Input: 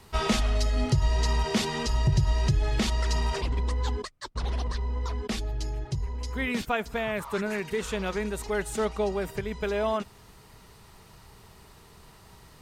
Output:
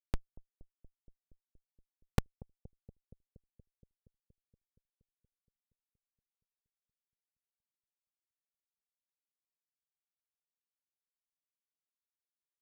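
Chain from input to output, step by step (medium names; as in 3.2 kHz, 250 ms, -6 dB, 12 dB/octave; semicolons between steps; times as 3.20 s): robot voice 86.4 Hz; Schmitt trigger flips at -19 dBFS; bucket-brigade echo 235 ms, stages 1024, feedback 75%, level -21 dB; trim +12 dB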